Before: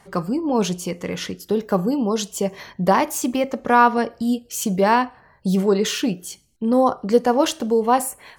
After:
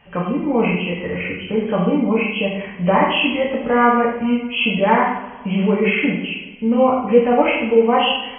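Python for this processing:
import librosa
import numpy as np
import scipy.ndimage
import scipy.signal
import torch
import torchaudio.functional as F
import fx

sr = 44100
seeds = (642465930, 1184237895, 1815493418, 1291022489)

y = fx.freq_compress(x, sr, knee_hz=1900.0, ratio=4.0)
y = fx.low_shelf(y, sr, hz=77.0, db=10.5)
y = fx.rev_double_slope(y, sr, seeds[0], early_s=0.8, late_s=2.3, knee_db=-18, drr_db=-5.0)
y = F.gain(torch.from_numpy(y), -4.0).numpy()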